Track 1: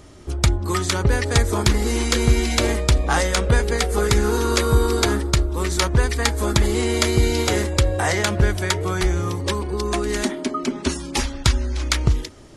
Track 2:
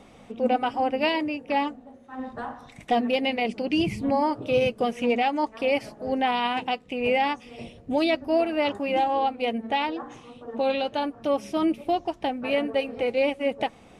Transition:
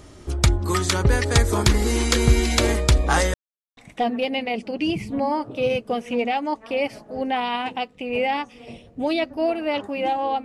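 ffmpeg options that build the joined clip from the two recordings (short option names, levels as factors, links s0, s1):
-filter_complex "[0:a]apad=whole_dur=10.44,atrim=end=10.44,asplit=2[s0][s1];[s0]atrim=end=3.34,asetpts=PTS-STARTPTS,afade=t=out:st=3.336:d=0.004:c=hsin[s2];[s1]atrim=start=3.34:end=3.77,asetpts=PTS-STARTPTS,volume=0[s3];[1:a]atrim=start=2.68:end=9.35,asetpts=PTS-STARTPTS,afade=t=in:d=0.004:c=hsin[s4];[s2][s3][s4]concat=n=3:v=0:a=1"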